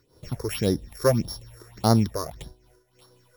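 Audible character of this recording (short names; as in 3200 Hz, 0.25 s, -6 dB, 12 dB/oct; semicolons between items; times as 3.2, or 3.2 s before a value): a buzz of ramps at a fixed pitch in blocks of 8 samples; phasing stages 6, 1.7 Hz, lowest notch 190–2500 Hz; a quantiser's noise floor 12-bit, dither none; noise-modulated level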